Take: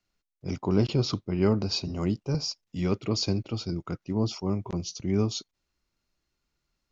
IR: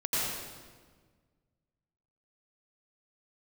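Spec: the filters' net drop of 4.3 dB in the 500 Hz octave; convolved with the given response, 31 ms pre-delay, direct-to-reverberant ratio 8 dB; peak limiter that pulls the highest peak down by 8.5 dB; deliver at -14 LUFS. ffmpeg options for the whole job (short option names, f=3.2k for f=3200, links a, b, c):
-filter_complex "[0:a]equalizer=f=500:t=o:g=-6,alimiter=limit=-20.5dB:level=0:latency=1,asplit=2[a][b];[1:a]atrim=start_sample=2205,adelay=31[c];[b][c]afir=irnorm=-1:irlink=0,volume=-17dB[d];[a][d]amix=inputs=2:normalize=0,volume=17dB"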